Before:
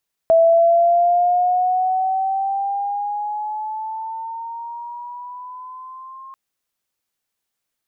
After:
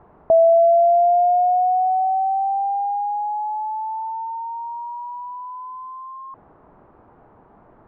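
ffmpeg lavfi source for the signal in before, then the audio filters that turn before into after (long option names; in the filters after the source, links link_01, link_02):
-f lavfi -i "aevalsrc='pow(10,(-9-26*t/6.04)/20)*sin(2*PI*656*6.04/(8.5*log(2)/12)*(exp(8.5*log(2)/12*t/6.04)-1))':duration=6.04:sample_rate=44100"
-af "aeval=exprs='val(0)+0.5*0.0282*sgn(val(0))':channel_layout=same,lowpass=frequency=1000:width=0.5412,lowpass=frequency=1000:width=1.3066,bandreject=frequency=540:width=12"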